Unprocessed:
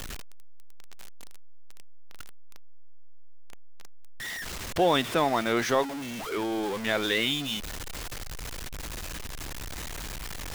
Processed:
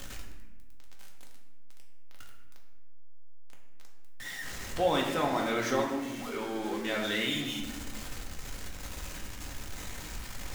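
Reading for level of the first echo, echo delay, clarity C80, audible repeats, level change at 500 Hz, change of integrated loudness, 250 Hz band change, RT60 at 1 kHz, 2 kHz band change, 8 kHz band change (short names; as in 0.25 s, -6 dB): none, none, 6.5 dB, none, -4.0 dB, -4.0 dB, -2.5 dB, 1.0 s, -4.0 dB, -3.5 dB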